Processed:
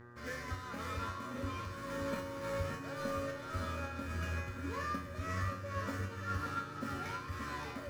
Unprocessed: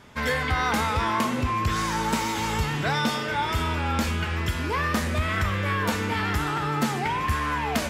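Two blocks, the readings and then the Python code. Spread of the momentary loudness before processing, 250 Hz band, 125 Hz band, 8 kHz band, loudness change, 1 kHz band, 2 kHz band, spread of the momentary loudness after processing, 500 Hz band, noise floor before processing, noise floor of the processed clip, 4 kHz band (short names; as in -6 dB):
2 LU, -14.5 dB, -13.0 dB, -17.5 dB, -14.5 dB, -15.5 dB, -16.0 dB, 3 LU, -10.5 dB, -29 dBFS, -46 dBFS, -19.0 dB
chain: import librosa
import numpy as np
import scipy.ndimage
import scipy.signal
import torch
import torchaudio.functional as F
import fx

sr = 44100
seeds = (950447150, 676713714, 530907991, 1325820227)

p1 = scipy.signal.medfilt(x, 15)
p2 = fx.small_body(p1, sr, hz=(270.0, 570.0, 1400.0), ring_ms=100, db=16)
p3 = fx.volume_shaper(p2, sr, bpm=109, per_beat=1, depth_db=-7, release_ms=237.0, shape='slow start')
p4 = fx.peak_eq(p3, sr, hz=80.0, db=-4.0, octaves=3.0)
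p5 = p4 + 0.5 * np.pad(p4, (int(1.7 * sr / 1000.0), 0))[:len(p4)]
p6 = fx.dmg_buzz(p5, sr, base_hz=120.0, harmonics=16, level_db=-38.0, tilt_db=-4, odd_only=False)
p7 = fx.rider(p6, sr, range_db=10, speed_s=0.5)
p8 = fx.peak_eq(p7, sr, hz=700.0, db=-11.0, octaves=0.66)
p9 = fx.comb_fb(p8, sr, f0_hz=92.0, decay_s=0.44, harmonics='all', damping=0.0, mix_pct=90)
p10 = p9 + fx.echo_single(p9, sr, ms=573, db=-7.5, dry=0)
y = p10 * librosa.db_to_amplitude(-2.5)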